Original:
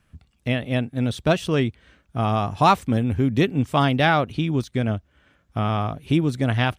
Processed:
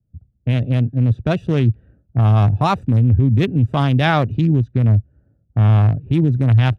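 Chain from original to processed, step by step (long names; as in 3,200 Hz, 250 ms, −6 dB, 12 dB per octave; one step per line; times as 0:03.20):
adaptive Wiener filter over 41 samples
low-pass that shuts in the quiet parts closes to 710 Hz, open at −20 dBFS
parametric band 110 Hz +11.5 dB 0.88 octaves
brickwall limiter −14 dBFS, peak gain reduction 10.5 dB
multiband upward and downward expander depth 40%
level +6.5 dB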